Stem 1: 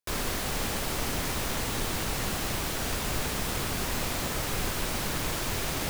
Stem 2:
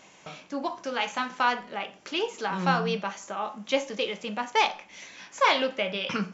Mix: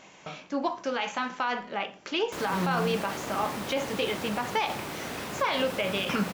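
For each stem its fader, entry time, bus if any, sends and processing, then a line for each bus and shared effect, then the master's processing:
-1.0 dB, 2.25 s, no send, high-pass 160 Hz 12 dB/octave; treble shelf 2.9 kHz -10 dB
+2.5 dB, 0.00 s, no send, treble shelf 5.9 kHz -6.5 dB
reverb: none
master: peak limiter -17.5 dBFS, peak gain reduction 11 dB

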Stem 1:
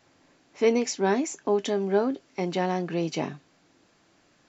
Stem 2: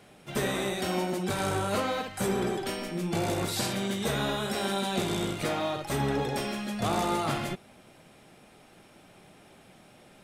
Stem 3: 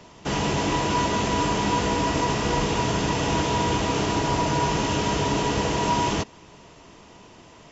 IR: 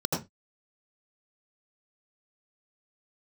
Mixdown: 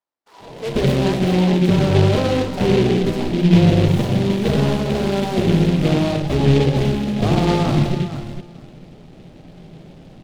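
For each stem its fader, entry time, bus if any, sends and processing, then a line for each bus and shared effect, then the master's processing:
-0.5 dB, 0.00 s, no send, no echo send, high-pass 810 Hz 12 dB/octave
+3.0 dB, 0.40 s, send -17 dB, echo send -10 dB, treble shelf 8.2 kHz -4.5 dB
-18.5 dB, 0.00 s, send -11.5 dB, no echo send, LFO high-pass sine 1.4 Hz 530–1700 Hz; three-phase chorus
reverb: on, RT60 0.20 s, pre-delay 75 ms
echo: feedback delay 455 ms, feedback 16%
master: gate -59 dBFS, range -26 dB; tilt EQ -4.5 dB/octave; delay time shaken by noise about 2.6 kHz, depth 0.073 ms

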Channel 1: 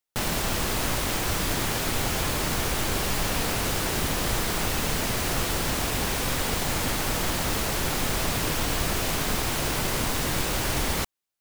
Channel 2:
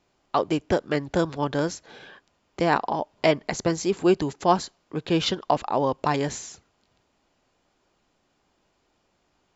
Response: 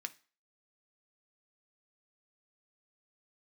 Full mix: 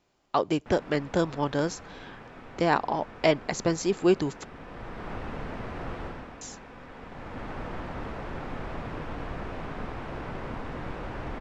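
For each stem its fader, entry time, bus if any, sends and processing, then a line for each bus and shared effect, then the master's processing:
-8.5 dB, 0.50 s, send -5.5 dB, low-pass 1.4 kHz 12 dB/octave; auto duck -15 dB, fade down 0.35 s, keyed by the second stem
-2.0 dB, 0.00 s, muted 4.45–6.41 s, no send, none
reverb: on, pre-delay 3 ms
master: none

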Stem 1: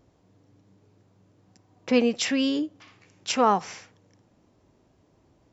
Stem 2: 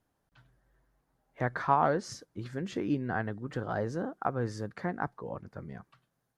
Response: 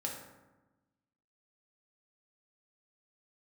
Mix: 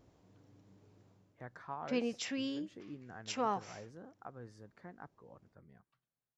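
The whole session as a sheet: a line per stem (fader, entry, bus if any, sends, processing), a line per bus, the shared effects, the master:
1.10 s -3.5 dB -> 1.40 s -13.5 dB, 0.00 s, no send, none
-18.0 dB, 0.00 s, no send, none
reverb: none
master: none

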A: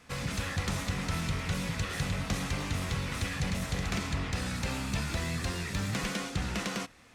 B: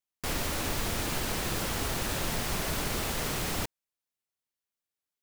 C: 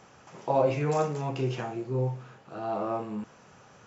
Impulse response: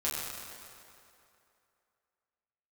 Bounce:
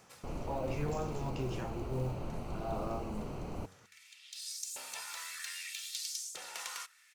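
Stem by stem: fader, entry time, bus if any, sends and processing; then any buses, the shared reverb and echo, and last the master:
-0.5 dB, 0.00 s, no send, pre-emphasis filter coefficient 0.8; comb 2.2 ms, depth 38%; LFO high-pass saw up 0.63 Hz 530–7300 Hz; auto duck -23 dB, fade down 0.30 s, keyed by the third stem
-5.5 dB, 0.00 s, no send, boxcar filter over 25 samples; de-hum 93.71 Hz, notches 5
-8.5 dB, 0.00 s, no send, peak limiter -21.5 dBFS, peak gain reduction 9.5 dB; tone controls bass +2 dB, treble +4 dB; short-mantissa float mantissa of 4-bit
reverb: none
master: none

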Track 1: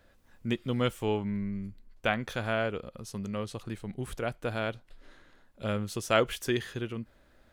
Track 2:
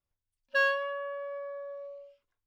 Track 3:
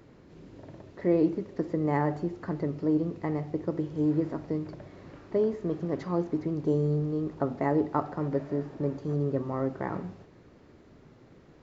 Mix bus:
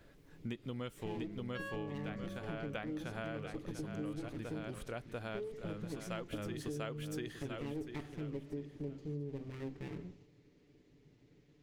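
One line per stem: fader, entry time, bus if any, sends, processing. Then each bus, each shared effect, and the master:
-0.5 dB, 0.00 s, no send, echo send -7.5 dB, auto duck -13 dB, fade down 1.75 s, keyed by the third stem
-12.5 dB, 1.00 s, no send, no echo send, none
-8.0 dB, 0.00 s, no send, no echo send, comb filter that takes the minimum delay 6.9 ms; high-order bell 950 Hz -12 dB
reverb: none
echo: feedback delay 693 ms, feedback 25%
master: compression 12:1, threshold -37 dBFS, peak gain reduction 12.5 dB

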